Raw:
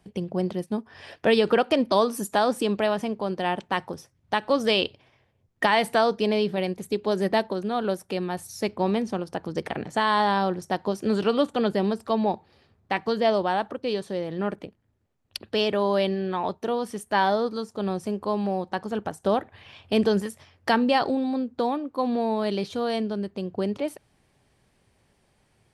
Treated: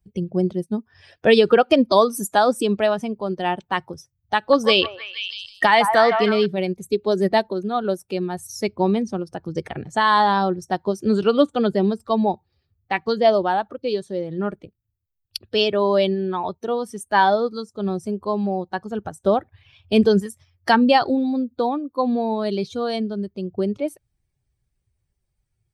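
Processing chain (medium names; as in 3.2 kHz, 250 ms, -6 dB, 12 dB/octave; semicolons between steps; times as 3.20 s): expander on every frequency bin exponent 1.5; 4.37–6.46 s: repeats whose band climbs or falls 157 ms, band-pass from 980 Hz, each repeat 0.7 oct, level -3.5 dB; trim +8 dB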